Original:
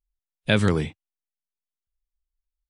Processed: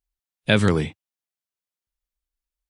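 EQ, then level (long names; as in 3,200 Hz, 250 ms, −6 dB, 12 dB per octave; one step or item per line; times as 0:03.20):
high-pass filter 61 Hz 6 dB per octave
+2.5 dB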